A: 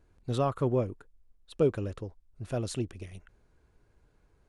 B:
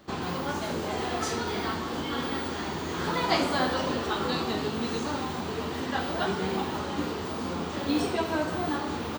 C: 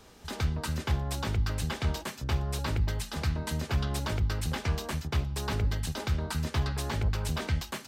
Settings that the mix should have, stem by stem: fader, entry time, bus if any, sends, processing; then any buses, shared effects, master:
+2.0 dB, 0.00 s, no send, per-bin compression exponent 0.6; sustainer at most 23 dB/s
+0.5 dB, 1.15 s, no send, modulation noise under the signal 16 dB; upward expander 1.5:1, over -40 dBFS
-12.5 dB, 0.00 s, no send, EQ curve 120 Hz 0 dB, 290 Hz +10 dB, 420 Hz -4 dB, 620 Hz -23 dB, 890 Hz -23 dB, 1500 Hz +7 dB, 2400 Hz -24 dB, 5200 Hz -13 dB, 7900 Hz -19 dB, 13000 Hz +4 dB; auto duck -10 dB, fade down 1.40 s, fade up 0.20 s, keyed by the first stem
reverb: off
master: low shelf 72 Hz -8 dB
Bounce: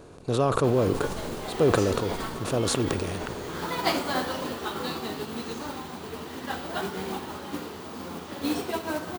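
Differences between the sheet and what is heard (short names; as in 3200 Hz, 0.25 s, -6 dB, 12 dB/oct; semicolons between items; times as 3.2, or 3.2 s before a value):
stem B: entry 1.15 s -> 0.55 s; stem C -12.5 dB -> -24.0 dB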